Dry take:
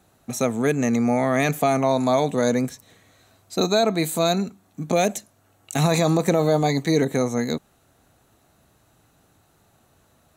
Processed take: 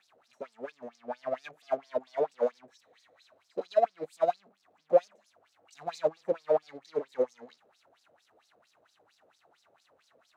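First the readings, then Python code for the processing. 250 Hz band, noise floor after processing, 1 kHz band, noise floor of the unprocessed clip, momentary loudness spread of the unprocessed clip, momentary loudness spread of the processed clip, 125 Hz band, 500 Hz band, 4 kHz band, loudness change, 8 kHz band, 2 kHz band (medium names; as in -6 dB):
-25.0 dB, -71 dBFS, -10.0 dB, -61 dBFS, 10 LU, 16 LU, -32.5 dB, -8.0 dB, -23.5 dB, -10.0 dB, under -25 dB, -20.0 dB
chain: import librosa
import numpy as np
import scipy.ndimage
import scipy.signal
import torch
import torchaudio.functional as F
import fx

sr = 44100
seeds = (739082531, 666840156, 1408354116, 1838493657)

y = fx.power_curve(x, sr, exponent=0.35)
y = fx.filter_lfo_bandpass(y, sr, shape='sine', hz=4.4, low_hz=470.0, high_hz=5300.0, q=5.0)
y = fx.upward_expand(y, sr, threshold_db=-33.0, expansion=2.5)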